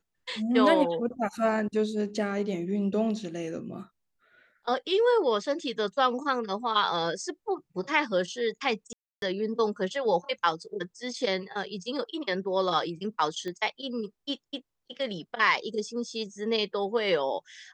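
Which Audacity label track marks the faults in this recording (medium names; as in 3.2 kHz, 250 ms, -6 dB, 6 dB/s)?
8.930000	9.220000	dropout 292 ms
13.480000	13.480000	pop -24 dBFS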